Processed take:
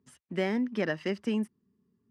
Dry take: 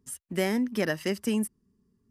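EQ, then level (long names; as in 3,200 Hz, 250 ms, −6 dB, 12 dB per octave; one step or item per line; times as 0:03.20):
band-pass filter 110–3,600 Hz
−2.0 dB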